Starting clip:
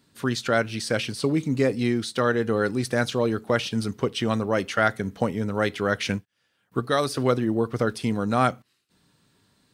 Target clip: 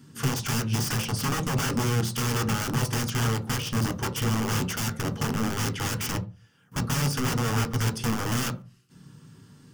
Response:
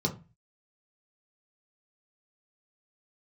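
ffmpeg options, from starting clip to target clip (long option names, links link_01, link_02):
-filter_complex "[0:a]equalizer=frequency=340:width=4.7:gain=3,acompressor=threshold=-35dB:ratio=2,aeval=exprs='(mod(33.5*val(0)+1,2)-1)/33.5':channel_layout=same,asplit=2[link_01][link_02];[1:a]atrim=start_sample=2205,lowshelf=frequency=190:gain=3.5[link_03];[link_02][link_03]afir=irnorm=-1:irlink=0,volume=-11dB[link_04];[link_01][link_04]amix=inputs=2:normalize=0,volume=7dB"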